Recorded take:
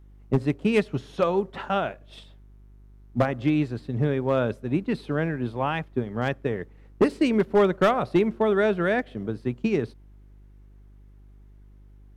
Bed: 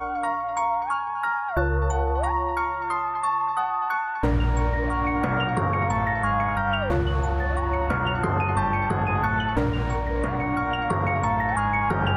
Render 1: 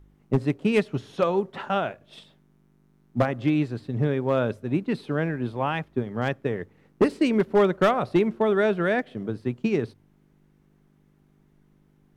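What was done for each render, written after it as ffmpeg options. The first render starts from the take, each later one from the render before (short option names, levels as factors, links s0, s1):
-af "bandreject=f=50:t=h:w=4,bandreject=f=100:t=h:w=4"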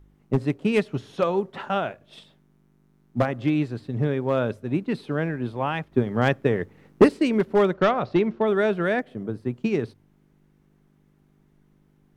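-filter_complex "[0:a]asplit=3[s0][s1][s2];[s0]afade=t=out:st=7.73:d=0.02[s3];[s1]lowpass=f=5800:w=0.5412,lowpass=f=5800:w=1.3066,afade=t=in:st=7.73:d=0.02,afade=t=out:st=8.46:d=0.02[s4];[s2]afade=t=in:st=8.46:d=0.02[s5];[s3][s4][s5]amix=inputs=3:normalize=0,asettb=1/sr,asplit=3[s6][s7][s8];[s6]atrim=end=8.994[s9];[s7]atrim=start=8.99:end=9.54,asetpts=PTS-STARTPTS,afade=t=in:d=0.004:c=qsin,afade=t=out:st=0.546:d=0.004:c=qsin,equalizer=f=3500:w=0.66:g=-6[s10];[s8]atrim=start=9.536[s11];[s9][s10]acrossfade=d=0.004:c1=hsin:c2=qsin[s12];[s12][s11]acrossfade=d=0.004:c1=qsin:c2=hsin,asplit=3[s13][s14][s15];[s13]atrim=end=5.922[s16];[s14]atrim=start=5.918:end=7.092,asetpts=PTS-STARTPTS,volume=1.88[s17];[s15]atrim=start=7.088[s18];[s16][s17]acrossfade=d=0.004:c1=hsin:c2=hsin[s19];[s19][s18]acrossfade=d=0.004:c1=hsin:c2=hsin"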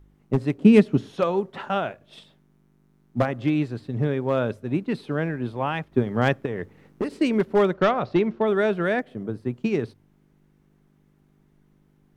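-filter_complex "[0:a]asettb=1/sr,asplit=3[s0][s1][s2];[s0]atrim=end=0.584[s3];[s1]atrim=start=0.58:end=1.09,asetpts=PTS-STARTPTS,afade=t=in:d=0.004:c=qsin,afade=t=out:st=0.506:d=0.004:c=qsin,equalizer=f=240:t=o:w=1.5:g=11[s4];[s2]atrim=start=1.086[s5];[s3][s4]acrossfade=d=0.004:c1=hsin:c2=qsin[s6];[s6][s5]acrossfade=d=0.004:c1=qsin:c2=hsin,asettb=1/sr,asplit=3[s7][s8][s9];[s7]atrim=end=6.454[s10];[s8]atrim=start=6.45:end=7.21,asetpts=PTS-STARTPTS,afade=t=in:d=0.004:c=qsin,afade=t=out:st=0.756:d=0.004:c=qsin,acompressor=threshold=0.0631:ratio=6:attack=3.2:release=140:knee=1:detection=peak[s11];[s9]atrim=start=7.206[s12];[s10][s11]acrossfade=d=0.004:c1=hsin:c2=qsin[s13];[s13][s12]acrossfade=d=0.004:c1=qsin:c2=hsin"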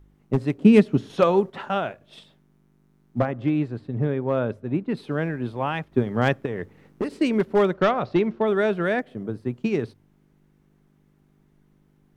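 -filter_complex "[0:a]asettb=1/sr,asplit=3[s0][s1][s2];[s0]atrim=end=3.194[s3];[s1]atrim=start=3.19:end=4.97,asetpts=PTS-STARTPTS,afade=t=in:d=0.004:c=qsin,afade=t=out:st=1.776:d=0.004:c=qsin,highshelf=f=3000:g=-11.5[s4];[s2]atrim=start=4.966[s5];[s3][s4]acrossfade=d=0.004:c1=hsin:c2=qsin[s6];[s6][s5]acrossfade=d=0.004:c1=qsin:c2=hsin,asplit=3[s7][s8][s9];[s7]atrim=end=1.102[s10];[s8]atrim=start=1.098:end=1.502,asetpts=PTS-STARTPTS,volume=1.68[s11];[s9]atrim=start=1.498[s12];[s10][s11]acrossfade=d=0.004:c1=hsin:c2=hsin[s13];[s13][s12]acrossfade=d=0.004:c1=hsin:c2=hsin"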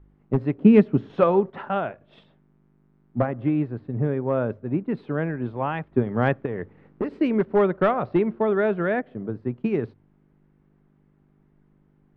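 -af "lowpass=2000"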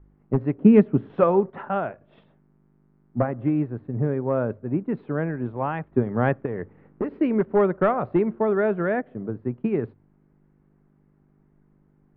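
-af "lowpass=2100"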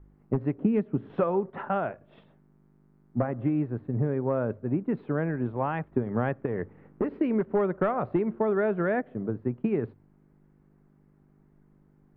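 -af "acompressor=threshold=0.0794:ratio=6"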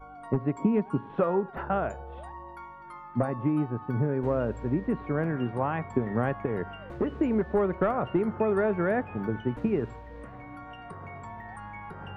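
-filter_complex "[1:a]volume=0.119[s0];[0:a][s0]amix=inputs=2:normalize=0"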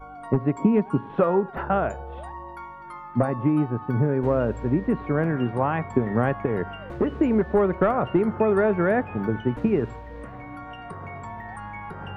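-af "volume=1.78"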